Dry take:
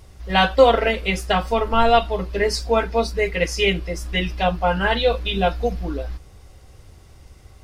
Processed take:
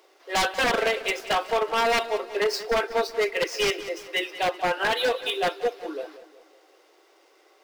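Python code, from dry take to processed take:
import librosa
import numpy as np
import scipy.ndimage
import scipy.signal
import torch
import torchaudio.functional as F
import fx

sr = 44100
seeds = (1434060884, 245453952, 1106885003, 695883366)

y = scipy.ndimage.median_filter(x, 5, mode='constant')
y = scipy.signal.sosfilt(scipy.signal.butter(12, 320.0, 'highpass', fs=sr, output='sos'), y)
y = 10.0 ** (-15.0 / 20.0) * (np.abs((y / 10.0 ** (-15.0 / 20.0) + 3.0) % 4.0 - 2.0) - 1.0)
y = fx.echo_feedback(y, sr, ms=187, feedback_pct=43, wet_db=-14.5)
y = F.gain(torch.from_numpy(y), -2.0).numpy()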